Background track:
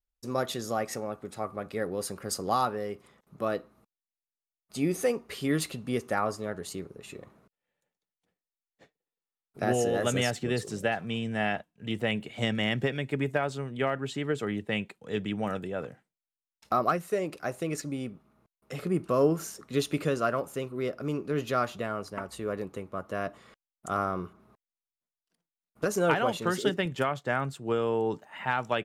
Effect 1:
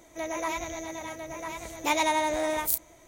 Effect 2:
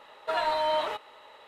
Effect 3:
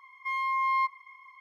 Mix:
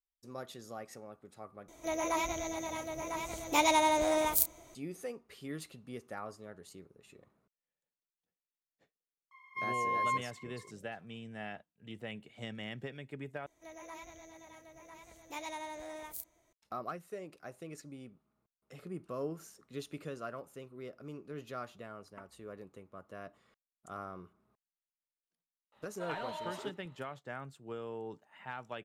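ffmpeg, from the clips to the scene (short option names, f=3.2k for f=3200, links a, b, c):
-filter_complex "[1:a]asplit=2[a][b];[0:a]volume=-14.5dB[c];[a]equalizer=f=1.8k:w=5.7:g=-9[d];[2:a]flanger=delay=18:depth=6.5:speed=2.9[e];[c]asplit=3[f][g][h];[f]atrim=end=1.684[i];[d]atrim=end=3.07,asetpts=PTS-STARTPTS,volume=-1dB[j];[g]atrim=start=4.746:end=13.464[k];[b]atrim=end=3.07,asetpts=PTS-STARTPTS,volume=-17dB[l];[h]atrim=start=16.526[m];[3:a]atrim=end=1.4,asetpts=PTS-STARTPTS,volume=-5.5dB,afade=t=in:d=0.004:c=hsin,afade=t=out:st=1.396:d=0.004:c=hsin,adelay=9310[n];[e]atrim=end=1.47,asetpts=PTS-STARTPTS,volume=-13dB,afade=t=in:d=0.004:c=hsin,afade=t=out:st=1.466:d=0.004:c=hsin,adelay=25720[o];[i][j]acrossfade=d=0.004:c1=hsin:c2=hsin[p];[p][k]acrossfade=d=0.004:c1=hsin:c2=hsin[q];[q][l]acrossfade=d=0.004:c1=hsin:c2=hsin[r];[r][m]acrossfade=d=0.004:c1=hsin:c2=hsin[s];[s][n][o]amix=inputs=3:normalize=0"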